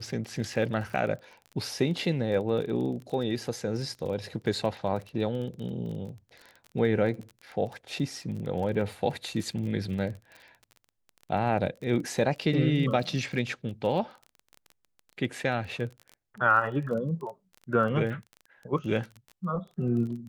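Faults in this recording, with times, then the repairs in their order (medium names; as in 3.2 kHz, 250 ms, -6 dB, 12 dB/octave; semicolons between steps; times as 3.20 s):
crackle 23 per s -36 dBFS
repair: de-click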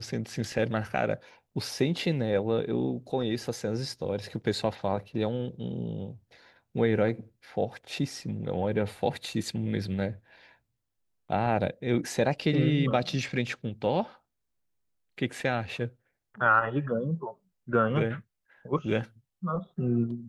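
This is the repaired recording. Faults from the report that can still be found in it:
nothing left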